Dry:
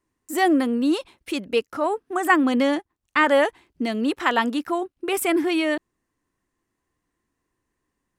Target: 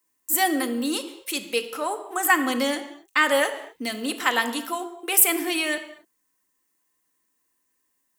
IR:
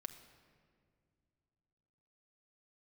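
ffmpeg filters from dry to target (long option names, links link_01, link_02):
-filter_complex "[0:a]aemphasis=mode=production:type=riaa[link_01];[1:a]atrim=start_sample=2205,afade=type=out:start_time=0.43:duration=0.01,atrim=end_sample=19404,asetrate=61740,aresample=44100[link_02];[link_01][link_02]afir=irnorm=-1:irlink=0,volume=5dB"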